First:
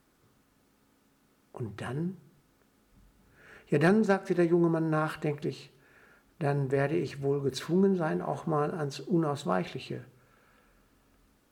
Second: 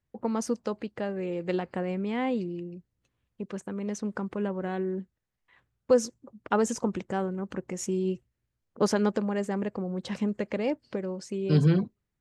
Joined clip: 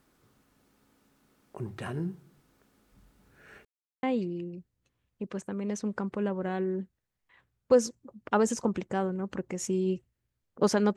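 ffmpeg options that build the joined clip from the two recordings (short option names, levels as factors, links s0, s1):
-filter_complex "[0:a]apad=whole_dur=10.96,atrim=end=10.96,asplit=2[s0][s1];[s0]atrim=end=3.65,asetpts=PTS-STARTPTS,afade=t=out:st=3.646:d=0.004:c=hsin[s2];[s1]atrim=start=3.65:end=4.03,asetpts=PTS-STARTPTS,volume=0[s3];[1:a]atrim=start=2.22:end=9.15,asetpts=PTS-STARTPTS,afade=t=in:d=0.004:c=hsin[s4];[s2][s3][s4]concat=n=3:v=0:a=1"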